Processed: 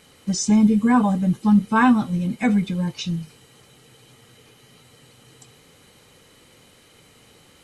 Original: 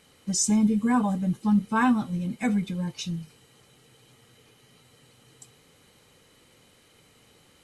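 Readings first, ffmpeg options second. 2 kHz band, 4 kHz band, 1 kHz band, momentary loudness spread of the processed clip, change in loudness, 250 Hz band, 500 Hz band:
+6.0 dB, +4.0 dB, +6.0 dB, 11 LU, +5.5 dB, +6.0 dB, +6.0 dB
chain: -filter_complex "[0:a]acrossover=split=6000[s0][s1];[s1]acompressor=threshold=0.00158:ratio=4:attack=1:release=60[s2];[s0][s2]amix=inputs=2:normalize=0,volume=2"

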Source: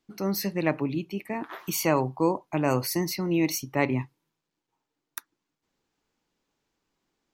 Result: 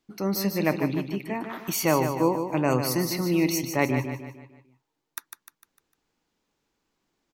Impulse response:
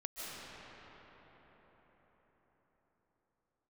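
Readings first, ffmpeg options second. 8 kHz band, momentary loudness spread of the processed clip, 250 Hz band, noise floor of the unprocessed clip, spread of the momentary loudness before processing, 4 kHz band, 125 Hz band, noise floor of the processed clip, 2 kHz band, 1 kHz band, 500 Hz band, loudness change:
+2.0 dB, 15 LU, +2.0 dB, -84 dBFS, 14 LU, +2.0 dB, +2.0 dB, -81 dBFS, +2.0 dB, +2.0 dB, +2.0 dB, +2.0 dB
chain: -af "aecho=1:1:151|302|453|604|755:0.422|0.186|0.0816|0.0359|0.0158,volume=1.12"

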